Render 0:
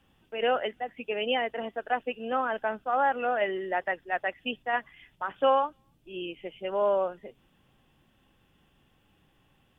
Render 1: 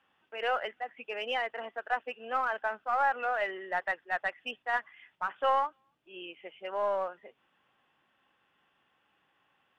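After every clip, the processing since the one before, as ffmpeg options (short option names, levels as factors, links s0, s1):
-filter_complex "[0:a]bandpass=f=1400:t=q:w=0.98:csg=0,asplit=2[s0][s1];[s1]aeval=exprs='clip(val(0),-1,0.0211)':c=same,volume=0.398[s2];[s0][s2]amix=inputs=2:normalize=0,volume=0.841"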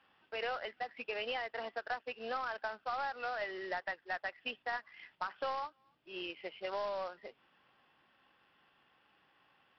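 -af "acompressor=threshold=0.0126:ratio=5,aresample=11025,acrusher=bits=3:mode=log:mix=0:aa=0.000001,aresample=44100,volume=1.26"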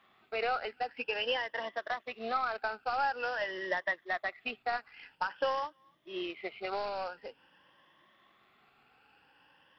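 -af "afftfilt=real='re*pow(10,10/40*sin(2*PI*(1.2*log(max(b,1)*sr/1024/100)/log(2)-(0.48)*(pts-256)/sr)))':imag='im*pow(10,10/40*sin(2*PI*(1.2*log(max(b,1)*sr/1024/100)/log(2)-(0.48)*(pts-256)/sr)))':win_size=1024:overlap=0.75,volume=1.5"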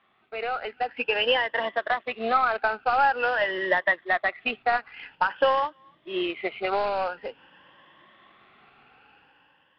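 -af "lowpass=f=3700:w=0.5412,lowpass=f=3700:w=1.3066,dynaudnorm=f=170:g=9:m=3.16"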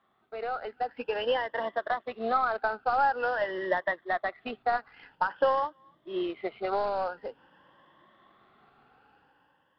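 -af "equalizer=f=2500:t=o:w=0.78:g=-13.5,volume=0.75"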